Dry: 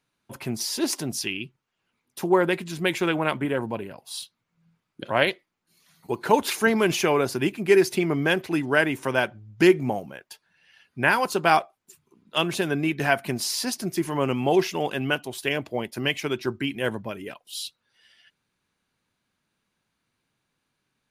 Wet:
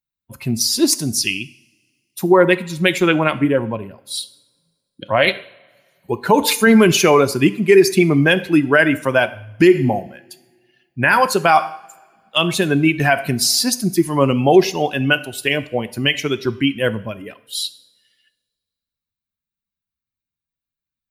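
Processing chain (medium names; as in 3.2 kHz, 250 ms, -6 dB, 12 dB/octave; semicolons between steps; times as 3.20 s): expander on every frequency bin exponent 1.5; two-slope reverb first 0.58 s, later 1.9 s, from -21 dB, DRR 13.5 dB; loudness maximiser +14.5 dB; trim -1 dB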